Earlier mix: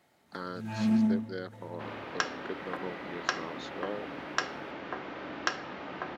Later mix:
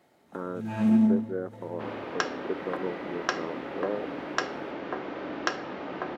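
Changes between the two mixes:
speech: add low-pass 1.4 kHz 24 dB/octave; master: add peaking EQ 390 Hz +7 dB 2.2 oct

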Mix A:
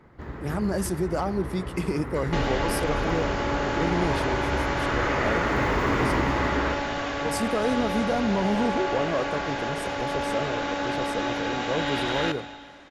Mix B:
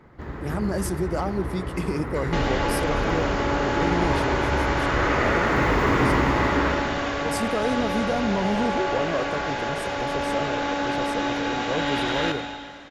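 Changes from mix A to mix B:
first sound: send +9.0 dB; second sound: send +7.0 dB

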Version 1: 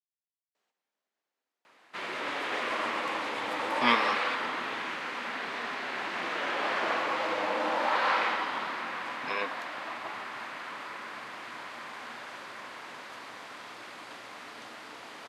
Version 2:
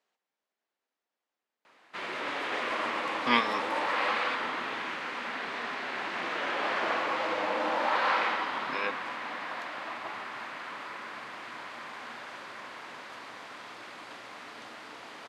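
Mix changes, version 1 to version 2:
speech: entry -0.55 s; master: add treble shelf 9.7 kHz -7 dB

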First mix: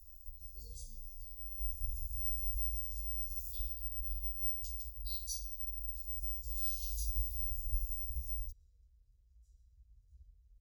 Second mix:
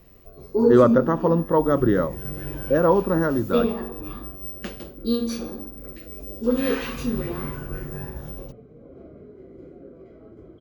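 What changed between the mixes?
speech +10.5 dB; second sound: entry -1.75 s; master: remove inverse Chebyshev band-stop 150–2300 Hz, stop band 50 dB

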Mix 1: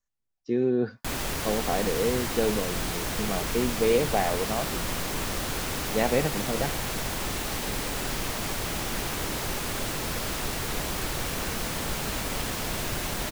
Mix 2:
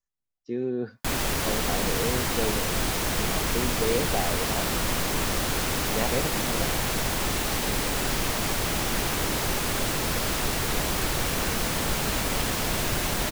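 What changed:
speech -4.5 dB; background +4.0 dB

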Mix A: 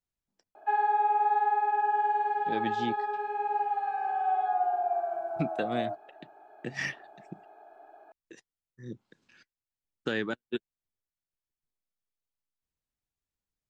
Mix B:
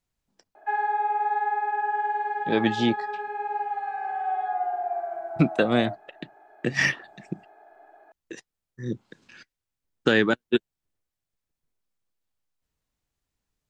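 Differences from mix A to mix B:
speech +11.0 dB; background: remove Butterworth band-stop 1.9 kHz, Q 3.2

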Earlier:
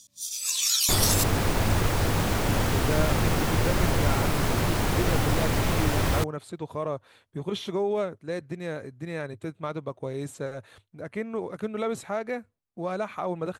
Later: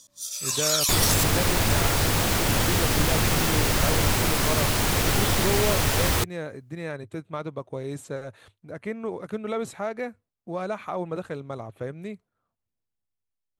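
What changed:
speech: entry -2.30 s; first sound: add high-order bell 750 Hz +10.5 dB 2.7 oct; second sound: add treble shelf 2.1 kHz +9 dB

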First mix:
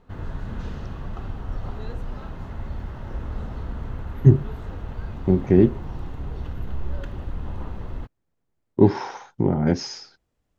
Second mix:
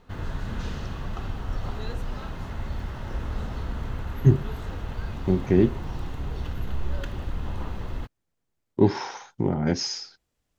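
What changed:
speech -4.0 dB; master: add treble shelf 2 kHz +9.5 dB

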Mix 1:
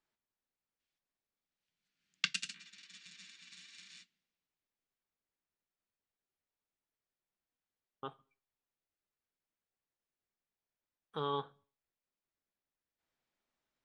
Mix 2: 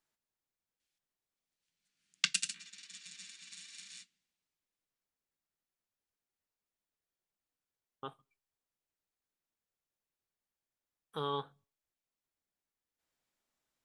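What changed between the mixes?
speech: send -9.0 dB; master: remove distance through air 110 m

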